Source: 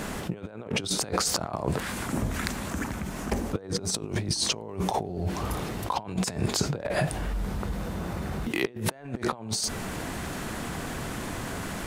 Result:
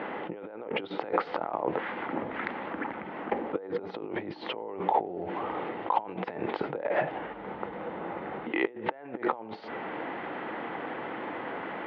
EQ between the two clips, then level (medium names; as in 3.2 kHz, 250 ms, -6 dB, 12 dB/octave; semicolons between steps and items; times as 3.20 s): distance through air 370 m; cabinet simulation 310–3400 Hz, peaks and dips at 320 Hz +6 dB, 500 Hz +7 dB, 850 Hz +9 dB, 1.3 kHz +3 dB, 2 kHz +7 dB, 3.1 kHz +4 dB; -2.0 dB